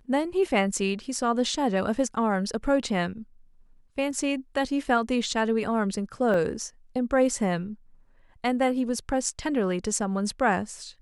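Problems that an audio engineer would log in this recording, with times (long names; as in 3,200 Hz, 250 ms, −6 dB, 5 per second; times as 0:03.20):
0:06.34: drop-out 2.1 ms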